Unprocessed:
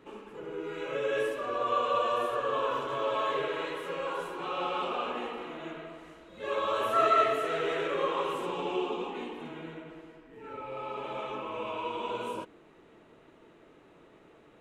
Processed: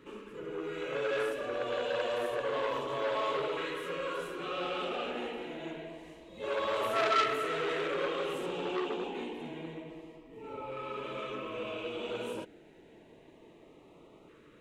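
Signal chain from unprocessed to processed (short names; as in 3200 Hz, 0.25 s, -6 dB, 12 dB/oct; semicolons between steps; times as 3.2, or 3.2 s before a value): LFO notch saw up 0.28 Hz 730–1700 Hz; core saturation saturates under 2100 Hz; gain +1.5 dB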